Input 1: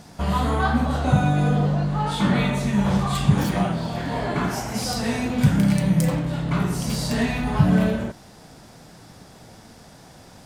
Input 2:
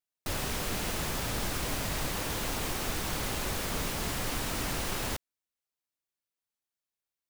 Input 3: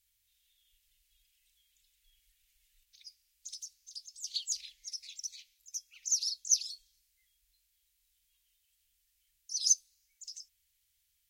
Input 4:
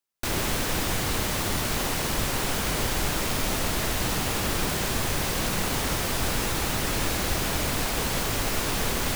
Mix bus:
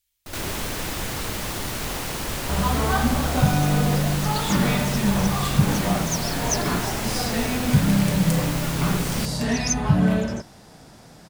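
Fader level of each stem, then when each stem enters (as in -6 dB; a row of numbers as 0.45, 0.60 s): -1.0, -5.0, +0.5, -2.5 dB; 2.30, 0.00, 0.00, 0.10 s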